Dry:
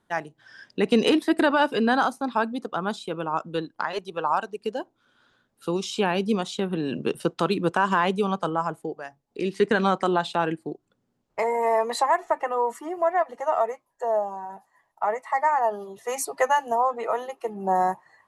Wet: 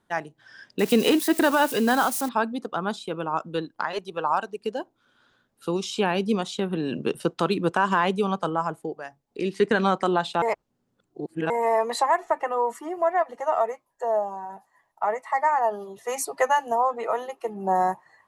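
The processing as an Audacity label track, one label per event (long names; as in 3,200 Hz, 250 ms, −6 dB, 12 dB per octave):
0.790000	2.290000	spike at every zero crossing of −24 dBFS
10.420000	11.500000	reverse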